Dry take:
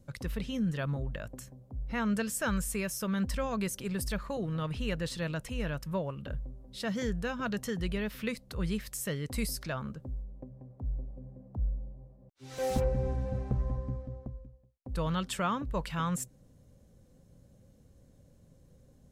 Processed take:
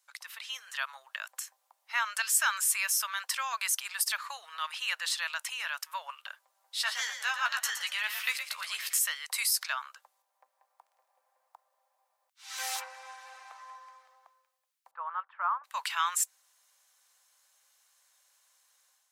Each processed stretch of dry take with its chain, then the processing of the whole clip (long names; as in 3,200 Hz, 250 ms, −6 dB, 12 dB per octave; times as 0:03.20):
0:06.50–0:08.99: high-pass filter 230 Hz + double-tracking delay 14 ms −7 dB + echo with shifted repeats 116 ms, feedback 42%, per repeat +52 Hz, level −8 dB
0:14.91–0:15.64: low-pass filter 1,300 Hz 24 dB per octave + expander for the loud parts, over −43 dBFS
whole clip: Butterworth high-pass 890 Hz 36 dB per octave; tilt shelving filter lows −3.5 dB, about 1,400 Hz; automatic gain control gain up to 7 dB